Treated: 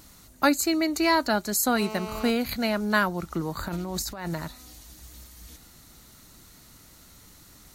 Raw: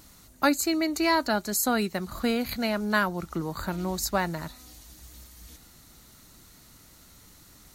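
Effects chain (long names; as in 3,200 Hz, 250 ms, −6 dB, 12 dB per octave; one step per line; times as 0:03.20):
0:01.76–0:02.30: phone interference −38 dBFS
0:03.68–0:04.34: compressor whose output falls as the input rises −34 dBFS, ratio −1
level +1.5 dB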